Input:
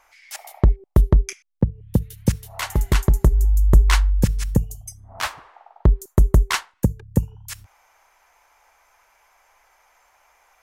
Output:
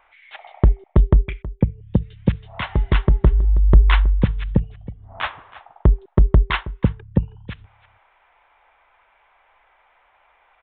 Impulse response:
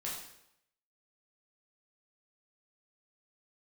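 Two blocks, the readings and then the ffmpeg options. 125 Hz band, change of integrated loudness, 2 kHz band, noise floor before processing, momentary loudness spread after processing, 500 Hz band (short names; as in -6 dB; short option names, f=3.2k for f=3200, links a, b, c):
+1.0 dB, +1.0 dB, +1.0 dB, -61 dBFS, 13 LU, +1.0 dB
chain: -filter_complex "[0:a]asplit=2[a][b];[b]adelay=320.7,volume=-17dB,highshelf=f=4k:g=-7.22[c];[a][c]amix=inputs=2:normalize=0,aresample=8000,aresample=44100,volume=1dB"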